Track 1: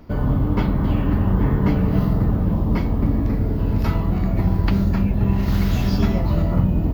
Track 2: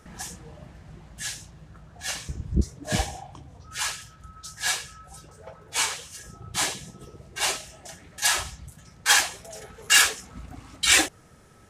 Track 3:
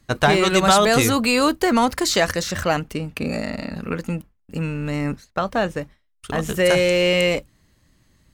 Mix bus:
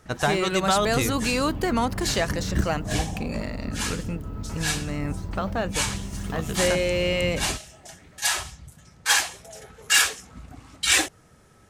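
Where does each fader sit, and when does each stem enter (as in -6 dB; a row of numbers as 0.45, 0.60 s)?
-14.0, -1.5, -6.5 dB; 0.65, 0.00, 0.00 s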